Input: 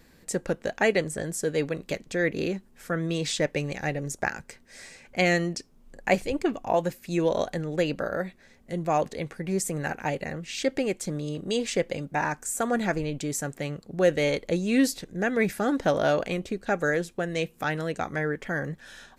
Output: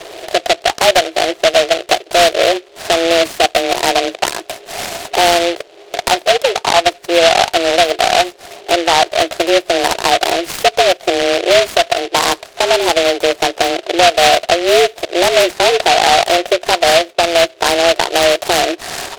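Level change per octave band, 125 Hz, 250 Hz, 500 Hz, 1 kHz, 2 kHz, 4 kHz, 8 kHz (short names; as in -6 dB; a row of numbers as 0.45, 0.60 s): -3.5, +5.5, +14.5, +19.0, +14.0, +24.0, +15.5 dB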